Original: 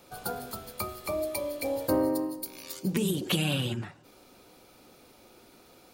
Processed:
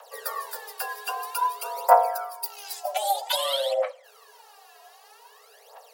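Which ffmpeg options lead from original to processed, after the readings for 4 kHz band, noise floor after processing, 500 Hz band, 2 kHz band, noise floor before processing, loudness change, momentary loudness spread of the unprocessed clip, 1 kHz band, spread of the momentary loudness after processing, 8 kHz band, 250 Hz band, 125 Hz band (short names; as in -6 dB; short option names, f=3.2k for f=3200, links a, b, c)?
+5.0 dB, -54 dBFS, +4.0 dB, +3.5 dB, -57 dBFS, +4.5 dB, 11 LU, +16.0 dB, 14 LU, +3.5 dB, under -40 dB, under -40 dB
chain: -af "aphaser=in_gain=1:out_gain=1:delay=3.4:decay=0.77:speed=0.52:type=triangular,afreqshift=410"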